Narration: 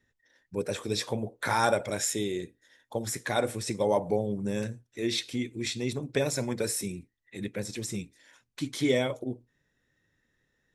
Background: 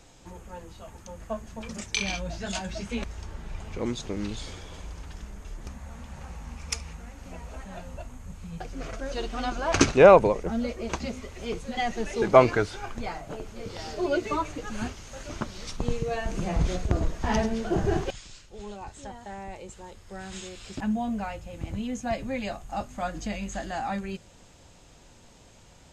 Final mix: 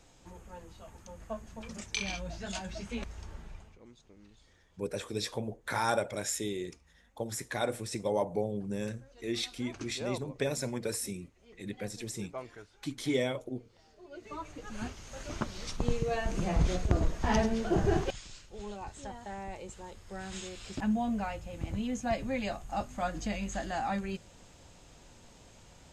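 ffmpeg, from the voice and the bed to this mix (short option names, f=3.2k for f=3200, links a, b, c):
-filter_complex "[0:a]adelay=4250,volume=-4.5dB[a];[1:a]volume=17.5dB,afade=t=out:st=3.35:d=0.43:silence=0.105925,afade=t=in:st=14.1:d=1.24:silence=0.0668344[b];[a][b]amix=inputs=2:normalize=0"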